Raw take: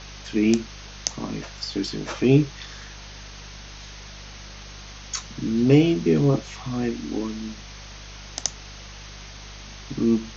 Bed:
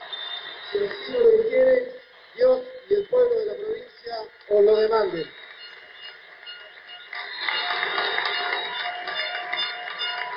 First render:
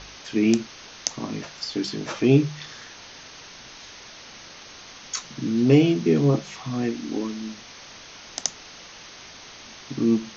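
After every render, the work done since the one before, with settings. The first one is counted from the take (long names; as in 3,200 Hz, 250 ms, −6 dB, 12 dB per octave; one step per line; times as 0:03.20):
hum removal 50 Hz, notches 4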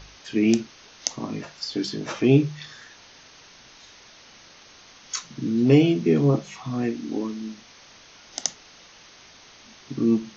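noise reduction from a noise print 6 dB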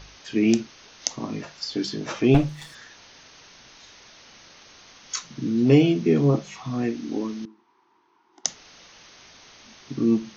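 0:02.34–0:02.75: lower of the sound and its delayed copy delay 6.1 ms
0:07.45–0:08.45: pair of resonant band-passes 580 Hz, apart 1.4 octaves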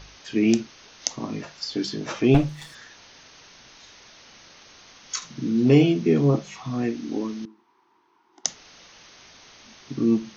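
0:05.17–0:05.84: double-tracking delay 49 ms −9.5 dB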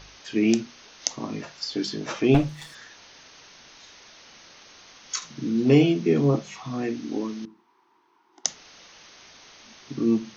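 low-shelf EQ 170 Hz −3.5 dB
mains-hum notches 60/120/180/240 Hz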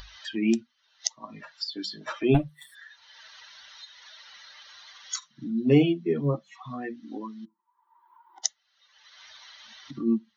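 spectral dynamics exaggerated over time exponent 2
upward compression, threshold −28 dBFS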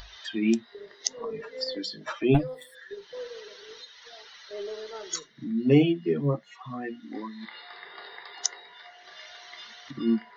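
mix in bed −19.5 dB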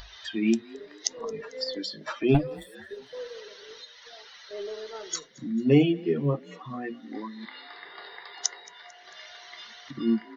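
echo with shifted repeats 223 ms, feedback 53%, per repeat +39 Hz, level −23.5 dB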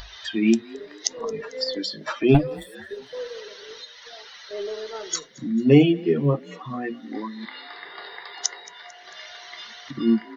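level +5 dB
brickwall limiter −3 dBFS, peak gain reduction 3 dB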